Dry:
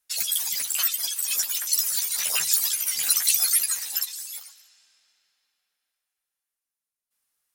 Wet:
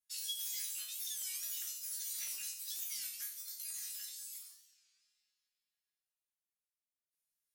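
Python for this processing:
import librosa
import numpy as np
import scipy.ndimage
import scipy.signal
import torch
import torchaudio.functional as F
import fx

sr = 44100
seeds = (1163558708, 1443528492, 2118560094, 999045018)

y = fx.tone_stack(x, sr, knobs='6-0-2')
y = fx.over_compress(y, sr, threshold_db=-42.0, ratio=-0.5)
y = fx.resonator_bank(y, sr, root=49, chord='sus4', decay_s=0.53)
y = fx.buffer_crackle(y, sr, first_s=0.84, period_s=0.13, block=128, kind='repeat')
y = fx.record_warp(y, sr, rpm=33.33, depth_cents=160.0)
y = y * 10.0 ** (17.5 / 20.0)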